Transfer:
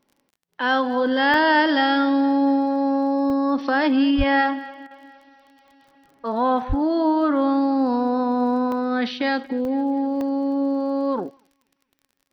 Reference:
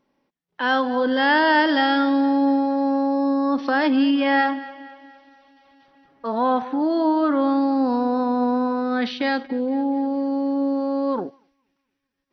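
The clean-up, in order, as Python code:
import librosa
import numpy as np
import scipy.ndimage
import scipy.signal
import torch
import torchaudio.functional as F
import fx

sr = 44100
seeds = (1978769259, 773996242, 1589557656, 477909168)

y = fx.fix_declick_ar(x, sr, threshold=6.5)
y = fx.fix_deplosive(y, sr, at_s=(4.17, 6.68))
y = fx.fix_interpolate(y, sr, at_s=(1.34, 3.3, 8.72, 9.65, 10.21, 11.37), length_ms=1.1)
y = fx.fix_interpolate(y, sr, at_s=(4.87,), length_ms=37.0)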